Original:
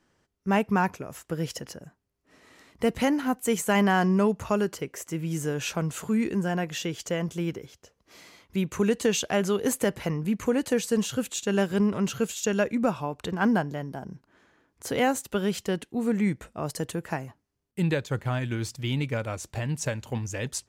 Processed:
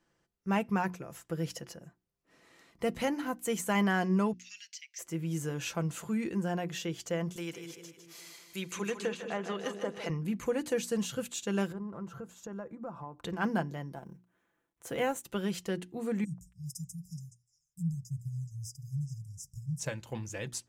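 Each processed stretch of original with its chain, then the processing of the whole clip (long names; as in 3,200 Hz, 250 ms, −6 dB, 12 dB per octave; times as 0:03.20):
0:04.33–0:04.99: gain on one half-wave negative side −3 dB + Butterworth high-pass 2,000 Hz 48 dB per octave + high shelf with overshoot 7,900 Hz −11.5 dB, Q 3
0:07.36–0:10.10: RIAA equalisation recording + treble cut that deepens with the level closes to 1,000 Hz, closed at −19.5 dBFS + echo with a time of its own for lows and highs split 510 Hz, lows 205 ms, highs 154 ms, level −7 dB
0:11.72–0:13.24: high shelf with overshoot 1,800 Hz −13.5 dB, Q 1.5 + downward compressor 2.5 to 1, threshold −36 dBFS
0:13.94–0:15.25: mu-law and A-law mismatch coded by A + parametric band 4,700 Hz −9.5 dB 0.49 octaves
0:16.24–0:19.80: linear-phase brick-wall band-stop 180–4,900 Hz + echo through a band-pass that steps 141 ms, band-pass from 840 Hz, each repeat 1.4 octaves, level −5.5 dB
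whole clip: mains-hum notches 60/120/180/240/300/360 Hz; comb filter 5.9 ms, depth 40%; level −6.5 dB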